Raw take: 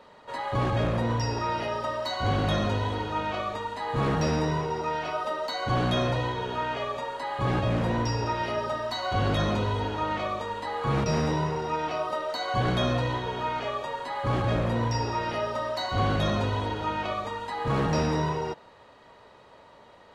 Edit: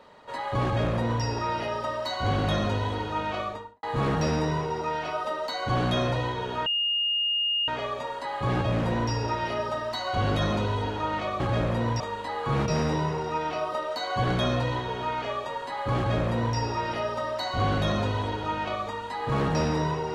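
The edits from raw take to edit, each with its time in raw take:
3.41–3.83 studio fade out
6.66 add tone 2840 Hz -23 dBFS 1.02 s
14.35–14.95 copy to 10.38

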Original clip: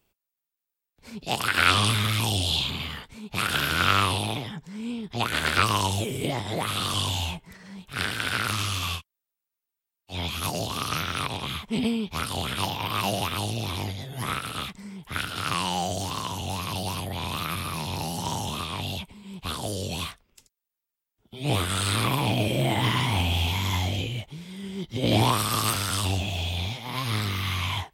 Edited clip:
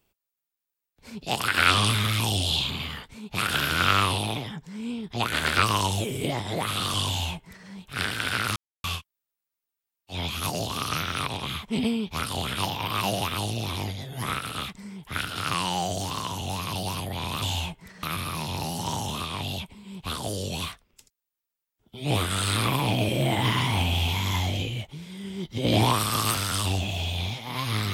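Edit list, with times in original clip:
7.07–7.68 copy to 17.42
8.56–8.84 mute

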